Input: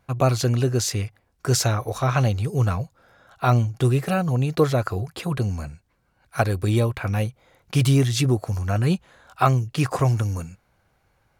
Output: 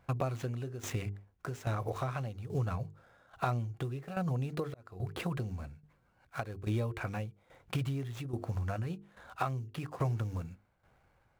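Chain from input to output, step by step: median filter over 9 samples; notches 50/100/150/200/250/300/350/400/450 Hz; compressor 6:1, threshold -29 dBFS, peak gain reduction 15 dB; 4.65–5.17 auto swell 0.324 s; tremolo saw down 1.2 Hz, depth 75%

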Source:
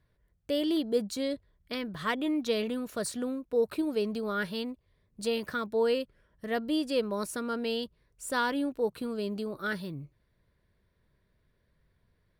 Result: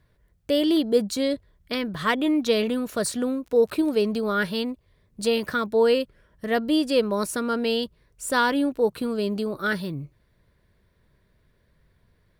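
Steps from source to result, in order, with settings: 3.41–4.06 crackle 23/s -40 dBFS; gain +7.5 dB

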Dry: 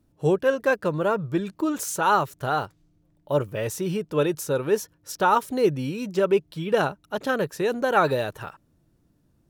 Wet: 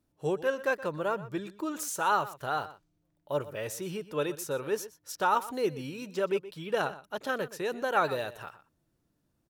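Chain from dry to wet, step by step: low shelf 380 Hz -8 dB; outdoor echo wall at 21 m, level -16 dB; gain -5 dB

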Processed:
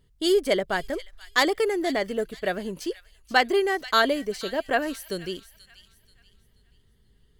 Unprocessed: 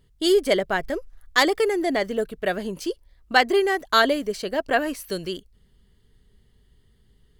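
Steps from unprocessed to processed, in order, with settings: thin delay 0.482 s, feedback 34%, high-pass 2300 Hz, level -13 dB; gain -2.5 dB

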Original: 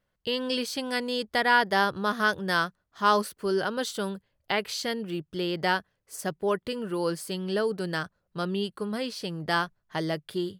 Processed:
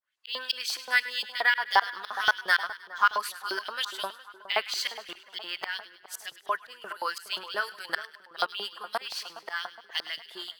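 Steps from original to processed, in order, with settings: bin magnitudes rounded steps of 15 dB; limiter -18 dBFS, peak gain reduction 8 dB; tremolo saw up 3.9 Hz, depth 100%; LFO high-pass saw up 5.7 Hz 760–3800 Hz; 7.32–7.79 doubler 29 ms -13.5 dB; split-band echo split 1500 Hz, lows 0.415 s, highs 0.102 s, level -14 dB; decimation joined by straight lines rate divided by 2×; gain +6.5 dB

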